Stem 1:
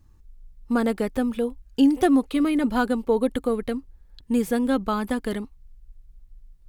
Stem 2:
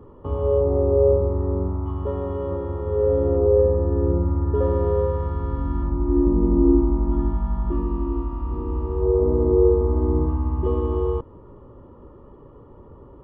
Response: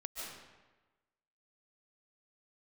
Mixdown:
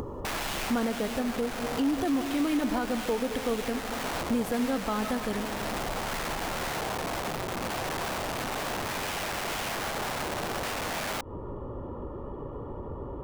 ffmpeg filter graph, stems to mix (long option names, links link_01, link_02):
-filter_complex "[0:a]alimiter=limit=-15dB:level=0:latency=1,volume=-2.5dB,asplit=2[link_01][link_02];[link_02]volume=-5dB[link_03];[1:a]acompressor=threshold=-25dB:ratio=20,aeval=exprs='(mod(37.6*val(0)+1,2)-1)/37.6':channel_layout=same,volume=2dB[link_04];[2:a]atrim=start_sample=2205[link_05];[link_03][link_05]afir=irnorm=-1:irlink=0[link_06];[link_01][link_04][link_06]amix=inputs=3:normalize=0,equalizer=frequency=730:width_type=o:width=0.81:gain=4,acompressor=mode=upward:threshold=-30dB:ratio=2.5,alimiter=limit=-19.5dB:level=0:latency=1:release=378"